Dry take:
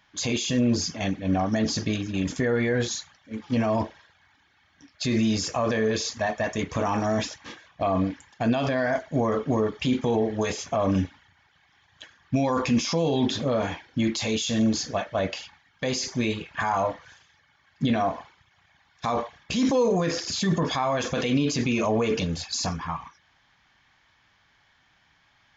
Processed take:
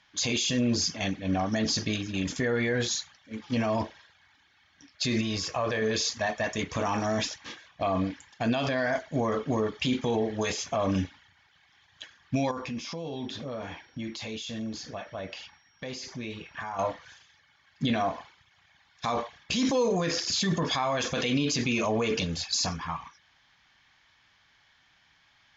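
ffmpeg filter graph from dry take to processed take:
ffmpeg -i in.wav -filter_complex "[0:a]asettb=1/sr,asplit=3[link_01][link_02][link_03];[link_01]atrim=end=5.214[link_04];[link_02]atrim=start=5.21:end=5.82,asetpts=PTS-STARTPTS,afade=type=in:duration=0.004:curve=qsin,afade=type=out:start_time=0.606:duration=0.004:curve=qsin,equalizer=frequency=240:width_type=o:width=0.44:gain=-8,adynamicsmooth=sensitivity=1:basefreq=5200,aeval=exprs='val(0)+0.00251*sin(2*PI*1100*n/s)':channel_layout=same[link_05];[link_03]atrim=start=5.816[link_06];[link_04][link_05]acrossfade=duration=0.004:curve1=hsin:curve2=qsin[link_07];[link_07][link_06]acrossfade=duration=0.004:curve1=qsin:curve2=hsin,asettb=1/sr,asplit=3[link_08][link_09][link_10];[link_08]atrim=end=12.514[link_11];[link_09]atrim=start=12.51:end=16.79,asetpts=PTS-STARTPTS,afade=type=in:duration=0.004:curve=qsin,afade=type=out:start_time=4.276:duration=0.004:curve=qsin,acompressor=threshold=-35dB:ratio=2:attack=3.2:release=140:knee=1:detection=peak,aeval=exprs='val(0)+0.001*sin(2*PI*5600*n/s)':channel_layout=same,highshelf=frequency=4600:gain=-12[link_12];[link_10]atrim=start=16.786[link_13];[link_11][link_12]acrossfade=duration=0.004:curve1=hsin:curve2=qsin[link_14];[link_14][link_13]acrossfade=duration=0.004:curve1=qsin:curve2=hsin,lowpass=6500,highshelf=frequency=2200:gain=8.5,volume=-4dB" out.wav

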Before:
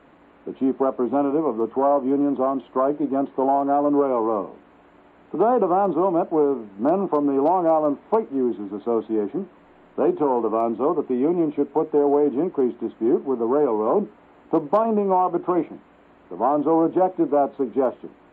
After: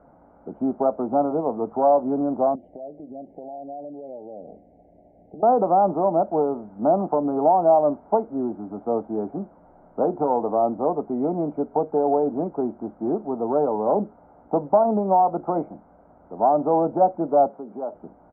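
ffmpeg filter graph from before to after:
ffmpeg -i in.wav -filter_complex "[0:a]asettb=1/sr,asplit=3[link_01][link_02][link_03];[link_01]atrim=end=2.554[link_04];[link_02]atrim=start=2.55:end=5.43,asetpts=PTS-STARTPTS,afade=type=in:duration=0.004:curve=qsin,afade=type=out:start_time=2.876:duration=0.004:curve=qsin,acompressor=threshold=-32dB:ratio=10:attack=3.2:release=140:knee=1:detection=peak,asuperstop=centerf=1200:order=8:qfactor=0.97[link_05];[link_03]atrim=start=5.426[link_06];[link_04][link_05]acrossfade=duration=0.004:curve1=hsin:curve2=qsin[link_07];[link_07][link_06]acrossfade=duration=0.004:curve1=qsin:curve2=hsin,asettb=1/sr,asplit=3[link_08][link_09][link_10];[link_08]atrim=end=17.474[link_11];[link_09]atrim=start=17.47:end=17.95,asetpts=PTS-STARTPTS,afade=type=in:duration=0.004:curve=qsin,afade=type=out:start_time=0.476:duration=0.004:curve=qsin,acompressor=threshold=-33dB:ratio=2:attack=3.2:release=140:knee=1:detection=peak,highpass=180[link_12];[link_10]atrim=start=17.946[link_13];[link_11][link_12]acrossfade=duration=0.004:curve1=hsin:curve2=qsin[link_14];[link_14][link_13]acrossfade=duration=0.004:curve1=qsin:curve2=hsin,lowpass=frequency=1100:width=0.5412,lowpass=frequency=1100:width=1.3066,aecho=1:1:1.4:0.53" out.wav

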